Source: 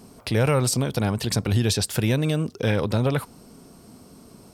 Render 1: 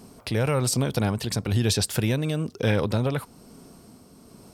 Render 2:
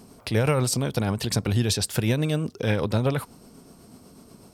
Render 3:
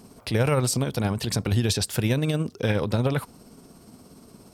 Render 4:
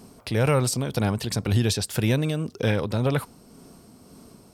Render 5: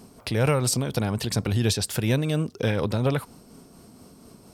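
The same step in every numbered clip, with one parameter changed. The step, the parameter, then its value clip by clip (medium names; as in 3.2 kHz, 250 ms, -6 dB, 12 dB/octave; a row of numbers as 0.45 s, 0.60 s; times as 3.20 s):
tremolo, rate: 1.1 Hz, 8.1 Hz, 17 Hz, 1.9 Hz, 4.2 Hz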